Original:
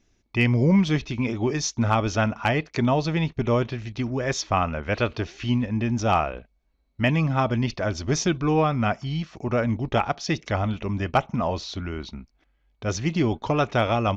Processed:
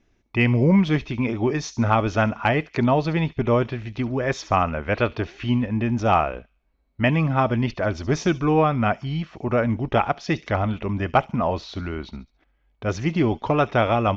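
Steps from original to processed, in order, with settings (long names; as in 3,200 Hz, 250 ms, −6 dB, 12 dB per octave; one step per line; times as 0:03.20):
bass and treble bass −2 dB, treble −13 dB
delay with a high-pass on its return 70 ms, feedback 39%, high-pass 4,300 Hz, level −11.5 dB
level +3 dB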